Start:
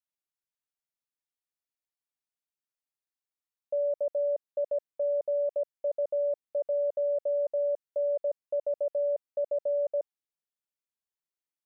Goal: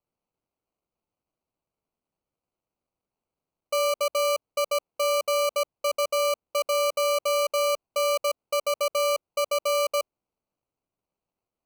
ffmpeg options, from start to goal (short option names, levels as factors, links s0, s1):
-af "acrusher=samples=25:mix=1:aa=0.000001,volume=1.58"